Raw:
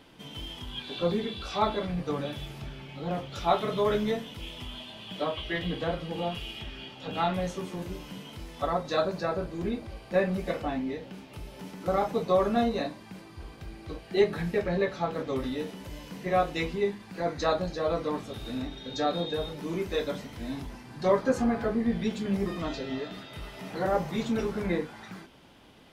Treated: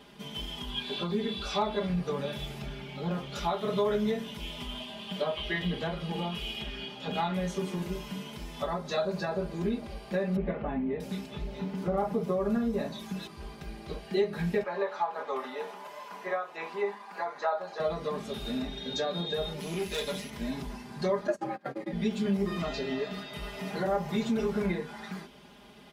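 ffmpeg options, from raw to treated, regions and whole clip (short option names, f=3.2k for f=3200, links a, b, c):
-filter_complex "[0:a]asettb=1/sr,asplit=3[a][b][c];[a]atrim=end=10.364[d];[b]atrim=start=10.36:end=13.27,asetpts=PTS-STARTPTS,afade=t=in:d=0.004:c=qsin,afade=t=out:st=2.906:d=0.004:c=qsin,lowshelf=f=330:g=5.5,acrossover=split=2700[e][f];[f]adelay=640[g];[e][g]amix=inputs=2:normalize=0,atrim=end_sample=128331[h];[c]atrim=start=13.266[i];[d][h]acrossfade=d=0.004:c1=hsin:c2=qsin[j];[j][i]acrossfade=d=0.004:c1=qsin:c2=hsin,asettb=1/sr,asplit=3[k][l][m];[k]atrim=end=14.634[n];[l]atrim=start=14.63:end=17.8,asetpts=PTS-STARTPTS,afade=t=in:d=0.004:c=qsin,afade=t=out:st=3.166:d=0.004:c=qsin,acrossover=split=2600[o][p];[p]acompressor=threshold=-45dB:ratio=4:attack=1:release=60[q];[o][q]amix=inputs=2:normalize=0,highpass=f=950:t=q:w=1.8,tiltshelf=f=1.3k:g=8[r];[m]atrim=start=17.796[s];[n][r]acrossfade=d=0.004:c1=hsin:c2=qsin[t];[t][s]acrossfade=d=0.004:c1=qsin:c2=hsin,asettb=1/sr,asplit=3[u][v][w];[u]atrim=end=19.604[x];[v]atrim=start=19.6:end=20.3,asetpts=PTS-STARTPTS,afade=t=in:d=0.004:c=qsin,afade=t=out:st=0.696:d=0.004:c=qsin,highshelf=f=1.9k:t=q:w=1.5:g=6.5,aeval=exprs='(tanh(28.2*val(0)+0.65)-tanh(0.65))/28.2':c=same,aeval=exprs='val(0)+0.00141*sin(2*PI*11000*n/s)':c=same[y];[w]atrim=start=20.296[z];[x][y]acrossfade=d=0.004:c1=hsin:c2=qsin[aa];[aa][z]acrossfade=d=0.004:c1=qsin:c2=hsin,asettb=1/sr,asplit=3[ab][ac][ad];[ab]atrim=end=21.274[ae];[ac]atrim=start=21.27:end=21.93,asetpts=PTS-STARTPTS,afade=t=in:d=0.004:c=qsin,afade=t=out:st=0.656:d=0.004:c=qsin,agate=range=-26dB:threshold=-29dB:ratio=16:release=100:detection=peak,afreqshift=87[af];[ad]atrim=start=21.926[ag];[ae][af]acrossfade=d=0.004:c1=hsin:c2=qsin[ah];[ah][ag]acrossfade=d=0.004:c1=qsin:c2=hsin,highpass=40,acompressor=threshold=-30dB:ratio=4,aecho=1:1:4.9:0.85"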